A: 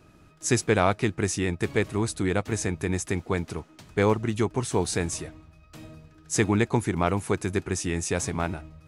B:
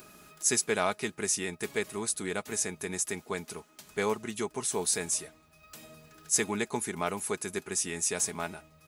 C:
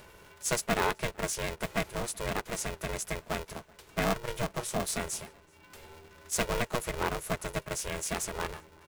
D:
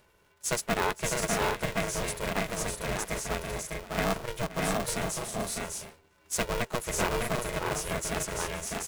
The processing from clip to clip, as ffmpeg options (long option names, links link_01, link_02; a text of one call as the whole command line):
ffmpeg -i in.wav -af "aemphasis=mode=production:type=bsi,aecho=1:1:4.8:0.43,acompressor=mode=upward:threshold=-37dB:ratio=2.5,volume=-6.5dB" out.wav
ffmpeg -i in.wav -filter_complex "[0:a]bass=frequency=250:gain=4,treble=frequency=4000:gain=-7,asplit=2[link_01][link_02];[link_02]adelay=379,volume=-26dB,highshelf=frequency=4000:gain=-8.53[link_03];[link_01][link_03]amix=inputs=2:normalize=0,aeval=exprs='val(0)*sgn(sin(2*PI*240*n/s))':channel_layout=same" out.wav
ffmpeg -i in.wav -filter_complex "[0:a]agate=range=-11dB:threshold=-48dB:ratio=16:detection=peak,asplit=2[link_01][link_02];[link_02]aecho=0:1:523|602|640:0.158|0.668|0.562[link_03];[link_01][link_03]amix=inputs=2:normalize=0" out.wav